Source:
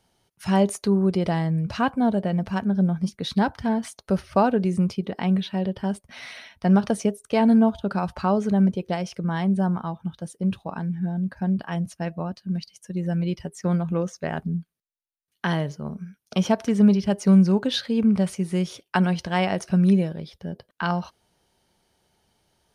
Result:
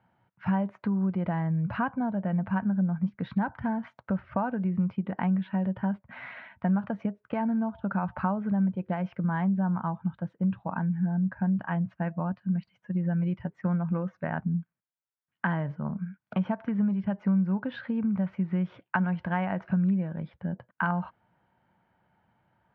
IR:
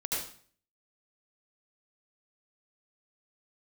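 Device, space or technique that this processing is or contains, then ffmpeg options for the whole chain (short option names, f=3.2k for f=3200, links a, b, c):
bass amplifier: -af "acompressor=threshold=-26dB:ratio=5,highpass=81,equalizer=f=120:t=q:w=4:g=6,equalizer=f=190:t=q:w=4:g=4,equalizer=f=410:t=q:w=4:g=-10,equalizer=f=950:t=q:w=4:g=5,equalizer=f=1.5k:t=q:w=4:g=5,lowpass=f=2.2k:w=0.5412,lowpass=f=2.2k:w=1.3066,volume=-1dB"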